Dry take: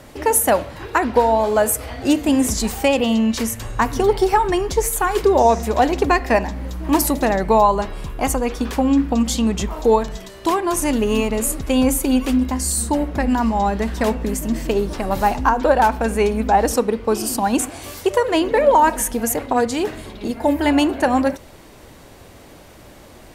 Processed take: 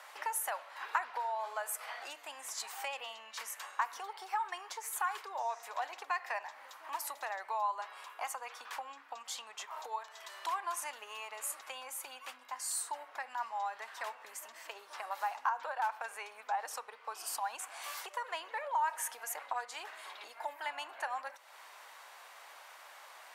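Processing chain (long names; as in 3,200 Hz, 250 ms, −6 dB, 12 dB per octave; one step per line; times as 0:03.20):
high-shelf EQ 2,200 Hz −10.5 dB
downward compressor 3 to 1, threshold −31 dBFS, peak gain reduction 15.5 dB
high-pass filter 920 Hz 24 dB per octave
level +1 dB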